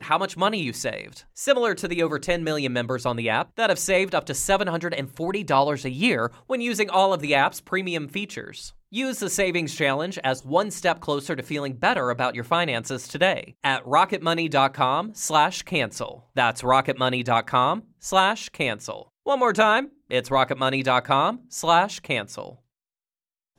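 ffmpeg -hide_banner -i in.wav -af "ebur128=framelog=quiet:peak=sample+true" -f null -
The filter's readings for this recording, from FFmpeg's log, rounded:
Integrated loudness:
  I:         -23.3 LUFS
  Threshold: -33.6 LUFS
Loudness range:
  LRA:         2.7 LU
  Threshold: -43.5 LUFS
  LRA low:   -25.0 LUFS
  LRA high:  -22.3 LUFS
Sample peak:
  Peak:       -5.8 dBFS
True peak:
  Peak:       -5.8 dBFS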